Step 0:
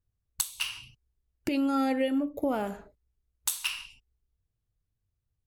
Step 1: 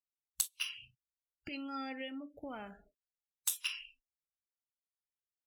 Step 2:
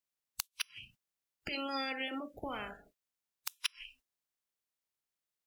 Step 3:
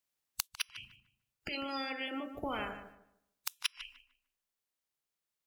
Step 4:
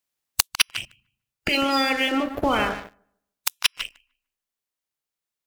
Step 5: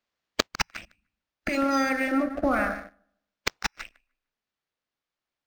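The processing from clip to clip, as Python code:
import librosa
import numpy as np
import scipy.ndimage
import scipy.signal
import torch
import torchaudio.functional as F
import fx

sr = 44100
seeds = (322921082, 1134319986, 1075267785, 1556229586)

y1 = fx.noise_reduce_blind(x, sr, reduce_db=28)
y1 = fx.tone_stack(y1, sr, knobs='5-5-5')
y1 = y1 * 10.0 ** (2.5 / 20.0)
y2 = fx.spec_clip(y1, sr, under_db=16)
y2 = fx.gate_flip(y2, sr, shuts_db=-23.0, range_db=-31)
y2 = y2 * 10.0 ** (4.5 / 20.0)
y3 = fx.rider(y2, sr, range_db=3, speed_s=0.5)
y3 = fx.echo_filtered(y3, sr, ms=150, feedback_pct=28, hz=2100.0, wet_db=-9.5)
y3 = y3 * 10.0 ** (1.0 / 20.0)
y4 = fx.leveller(y3, sr, passes=3)
y4 = fx.rider(y4, sr, range_db=4, speed_s=2.0)
y4 = y4 * 10.0 ** (6.5 / 20.0)
y5 = fx.fixed_phaser(y4, sr, hz=630.0, stages=8)
y5 = np.interp(np.arange(len(y5)), np.arange(len(y5))[::4], y5[::4])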